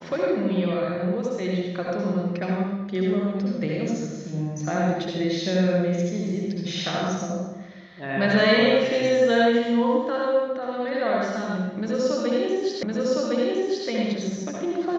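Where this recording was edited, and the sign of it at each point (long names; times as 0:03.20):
0:12.83: the same again, the last 1.06 s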